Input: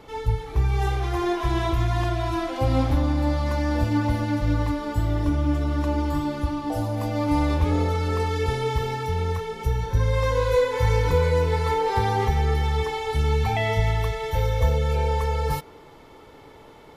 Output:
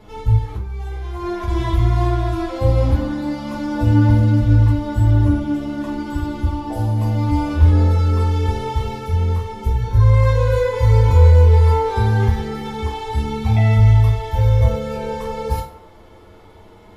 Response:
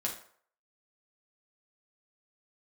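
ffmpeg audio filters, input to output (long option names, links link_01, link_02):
-filter_complex "[0:a]lowshelf=frequency=140:gain=12,asettb=1/sr,asplit=3[link_01][link_02][link_03];[link_01]atrim=end=0.404[link_04];[link_02]atrim=start=0.4:end=1.48,asetpts=PTS-STARTPTS,afade=type=in:duration=0.004:curve=qsin,afade=type=out:start_time=1.076:duration=0.004:curve=qsin,acompressor=threshold=-22dB:ratio=6[link_05];[link_03]atrim=start=1.476[link_06];[link_04][link_05]acrossfade=duration=0.004:curve1=hsin:curve2=qsin[link_07];[link_07][link_06]acrossfade=duration=0.004:curve1=qsin:curve2=hsin,flanger=delay=9.8:depth=1.6:regen=49:speed=0.22:shape=triangular[link_08];[1:a]atrim=start_sample=2205[link_09];[link_08][link_09]afir=irnorm=-1:irlink=0,volume=1.5dB"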